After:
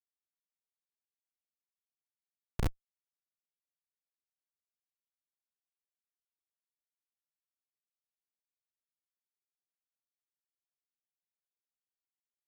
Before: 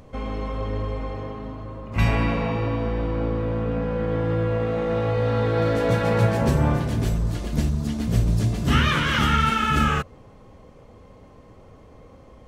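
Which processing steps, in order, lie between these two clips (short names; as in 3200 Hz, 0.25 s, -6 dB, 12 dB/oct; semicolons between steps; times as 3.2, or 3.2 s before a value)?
Doppler pass-by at 2.66, 15 m/s, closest 1.6 m; Schmitt trigger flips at -18.5 dBFS; gain +13 dB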